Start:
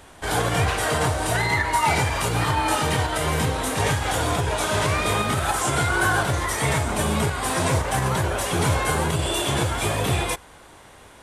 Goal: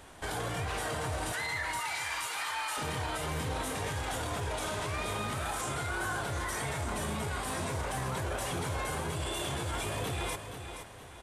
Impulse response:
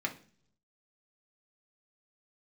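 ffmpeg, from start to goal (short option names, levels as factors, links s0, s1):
-filter_complex "[0:a]asettb=1/sr,asplit=3[s0][s1][s2];[s0]atrim=end=1.324[s3];[s1]atrim=start=1.32:end=2.77,asetpts=PTS-STARTPTS,afade=t=in:d=0.004:c=qsin,afade=t=out:st=1.446:d=0.004:c=qsin,highpass=1200[s4];[s2]atrim=start=2.766[s5];[s3][s4]acrossfade=d=0.004:c1=hsin:c2=qsin[s6];[s6][s5]acrossfade=d=0.004:c1=qsin:c2=hsin,alimiter=limit=0.0794:level=0:latency=1:release=28,aecho=1:1:473|946|1419|1892:0.355|0.121|0.041|0.0139,volume=0.562"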